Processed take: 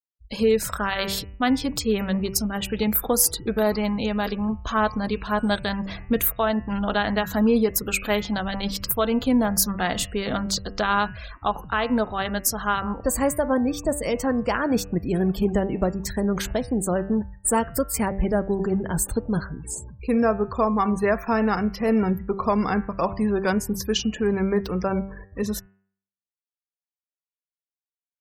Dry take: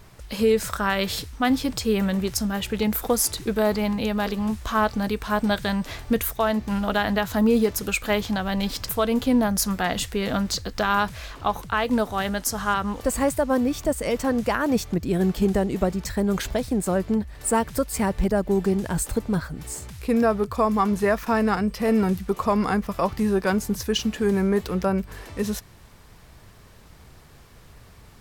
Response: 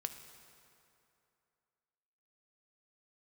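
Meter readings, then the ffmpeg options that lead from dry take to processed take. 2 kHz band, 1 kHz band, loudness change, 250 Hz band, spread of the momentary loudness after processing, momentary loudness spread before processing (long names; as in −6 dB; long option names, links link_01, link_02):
−0.5 dB, −0.5 dB, 0.0 dB, −0.5 dB, 6 LU, 5 LU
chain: -af "agate=range=-18dB:threshold=-38dB:ratio=16:detection=peak,afftfilt=real='re*gte(hypot(re,im),0.0158)':imag='im*gte(hypot(re,im),0.0158)':win_size=1024:overlap=0.75,highshelf=frequency=11000:gain=9,bandreject=frequency=97.56:width_type=h:width=4,bandreject=frequency=195.12:width_type=h:width=4,bandreject=frequency=292.68:width_type=h:width=4,bandreject=frequency=390.24:width_type=h:width=4,bandreject=frequency=487.8:width_type=h:width=4,bandreject=frequency=585.36:width_type=h:width=4,bandreject=frequency=682.92:width_type=h:width=4,bandreject=frequency=780.48:width_type=h:width=4,bandreject=frequency=878.04:width_type=h:width=4,bandreject=frequency=975.6:width_type=h:width=4,bandreject=frequency=1073.16:width_type=h:width=4,bandreject=frequency=1170.72:width_type=h:width=4,bandreject=frequency=1268.28:width_type=h:width=4,bandreject=frequency=1365.84:width_type=h:width=4,bandreject=frequency=1463.4:width_type=h:width=4,bandreject=frequency=1560.96:width_type=h:width=4,bandreject=frequency=1658.52:width_type=h:width=4,bandreject=frequency=1756.08:width_type=h:width=4,bandreject=frequency=1853.64:width_type=h:width=4,bandreject=frequency=1951.2:width_type=h:width=4,bandreject=frequency=2048.76:width_type=h:width=4,bandreject=frequency=2146.32:width_type=h:width=4,bandreject=frequency=2243.88:width_type=h:width=4,bandreject=frequency=2341.44:width_type=h:width=4,bandreject=frequency=2439:width_type=h:width=4,bandreject=frequency=2536.56:width_type=h:width=4,bandreject=frequency=2634.12:width_type=h:width=4,bandreject=frequency=2731.68:width_type=h:width=4,bandreject=frequency=2829.24:width_type=h:width=4,bandreject=frequency=2926.8:width_type=h:width=4"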